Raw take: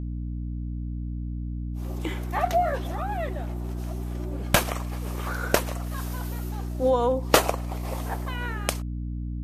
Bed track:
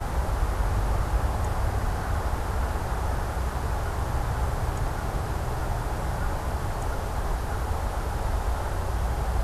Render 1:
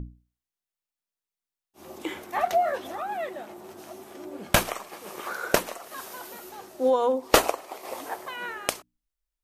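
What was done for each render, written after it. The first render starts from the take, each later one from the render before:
mains-hum notches 60/120/180/240/300 Hz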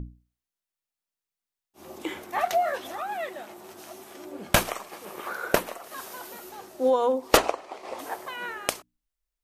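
0:02.38–0:04.32: tilt shelving filter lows −3.5 dB
0:05.05–0:05.84: parametric band 6,300 Hz −5 dB 1.5 octaves
0:07.37–0:07.99: high-frequency loss of the air 83 metres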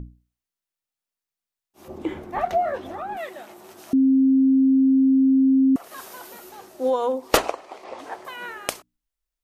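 0:01.88–0:03.17: spectral tilt −4 dB per octave
0:03.93–0:05.76: beep over 266 Hz −13.5 dBFS
0:07.84–0:08.25: high-frequency loss of the air 75 metres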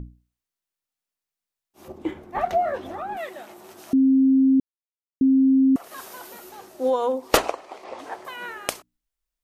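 0:01.92–0:02.39: noise gate −31 dBFS, range −6 dB
0:04.60–0:05.21: silence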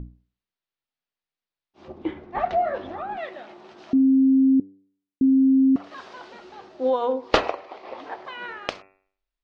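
inverse Chebyshev low-pass filter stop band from 12,000 Hz, stop band 60 dB
hum removal 96.34 Hz, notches 28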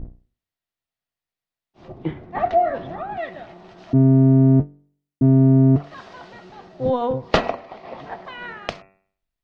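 sub-octave generator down 1 octave, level +3 dB
hollow resonant body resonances 680/1,900 Hz, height 7 dB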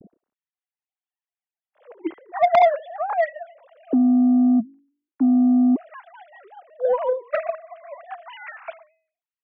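three sine waves on the formant tracks
soft clipping −9.5 dBFS, distortion −13 dB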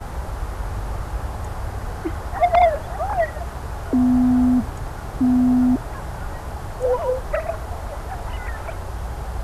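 mix in bed track −2 dB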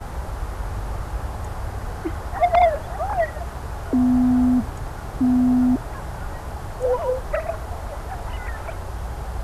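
level −1 dB

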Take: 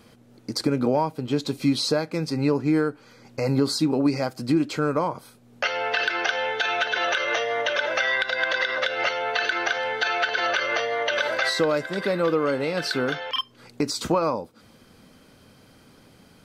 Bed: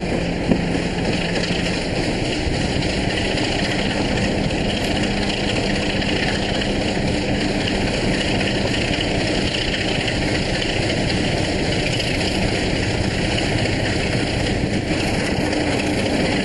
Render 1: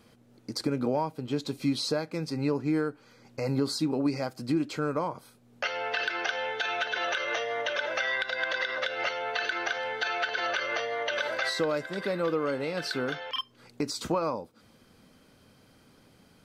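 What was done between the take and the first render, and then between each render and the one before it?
level −6 dB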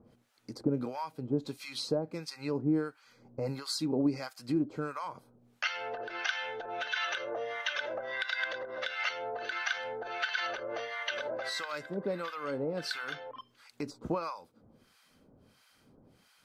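two-band tremolo in antiphase 1.5 Hz, depth 100%, crossover 910 Hz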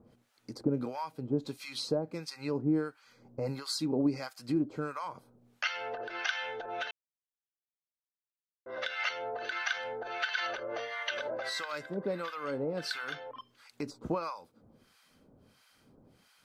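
0:06.91–0:08.66: silence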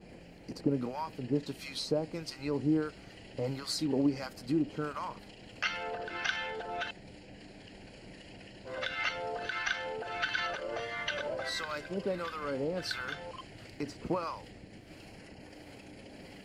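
mix in bed −31 dB

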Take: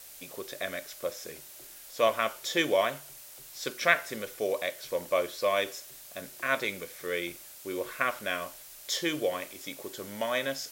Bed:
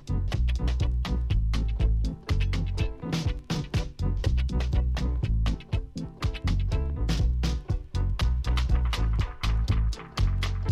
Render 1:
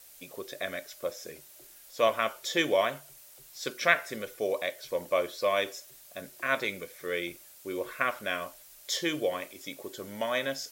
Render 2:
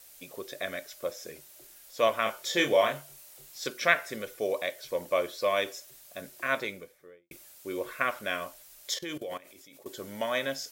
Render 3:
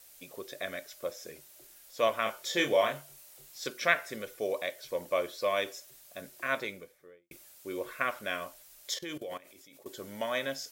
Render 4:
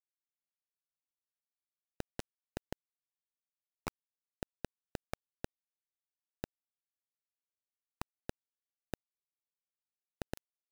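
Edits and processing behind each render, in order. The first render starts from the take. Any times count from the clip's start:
broadband denoise 6 dB, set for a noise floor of −49 dBFS
0:02.23–0:03.67: double-tracking delay 28 ms −4.5 dB; 0:06.44–0:07.31: fade out and dull; 0:08.94–0:09.86: output level in coarse steps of 18 dB
level −2.5 dB
comparator with hysteresis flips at −22.5 dBFS; bit reduction 5 bits

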